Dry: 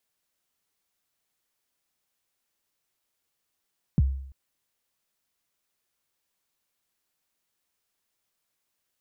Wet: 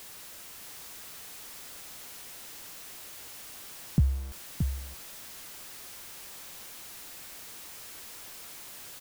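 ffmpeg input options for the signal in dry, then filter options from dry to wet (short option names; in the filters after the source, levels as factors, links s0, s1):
-f lavfi -i "aevalsrc='0.188*pow(10,-3*t/0.68)*sin(2*PI*(210*0.03/log(67/210)*(exp(log(67/210)*min(t,0.03)/0.03)-1)+67*max(t-0.03,0)))':d=0.34:s=44100"
-filter_complex "[0:a]aeval=exprs='val(0)+0.5*0.01*sgn(val(0))':c=same,asplit=2[s0][s1];[s1]aecho=0:1:624:0.501[s2];[s0][s2]amix=inputs=2:normalize=0"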